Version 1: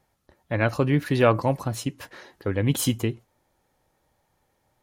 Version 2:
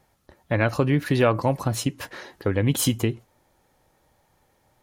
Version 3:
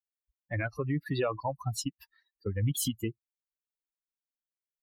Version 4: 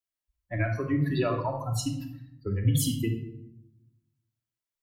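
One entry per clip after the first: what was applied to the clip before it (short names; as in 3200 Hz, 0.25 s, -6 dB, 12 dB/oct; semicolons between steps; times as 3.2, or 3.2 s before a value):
compressor 2:1, threshold -26 dBFS, peak gain reduction 7.5 dB; gain +5.5 dB
per-bin expansion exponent 3; limiter -21.5 dBFS, peak gain reduction 9.5 dB
shoebox room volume 2200 m³, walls furnished, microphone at 2.9 m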